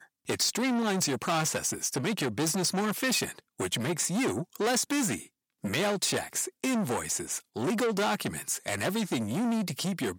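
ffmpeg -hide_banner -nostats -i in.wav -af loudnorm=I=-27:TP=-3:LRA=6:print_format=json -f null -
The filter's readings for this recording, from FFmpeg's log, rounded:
"input_i" : "-29.5",
"input_tp" : "-15.3",
"input_lra" : "1.6",
"input_thresh" : "-39.5",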